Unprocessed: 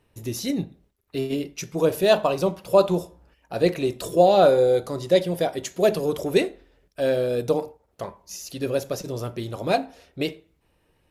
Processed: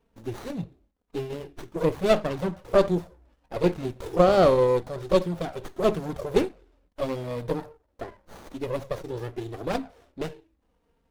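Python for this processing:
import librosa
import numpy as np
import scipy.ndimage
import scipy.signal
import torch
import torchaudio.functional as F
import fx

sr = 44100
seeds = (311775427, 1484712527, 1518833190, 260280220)

y = fx.env_flanger(x, sr, rest_ms=4.4, full_db=-13.5)
y = fx.running_max(y, sr, window=17)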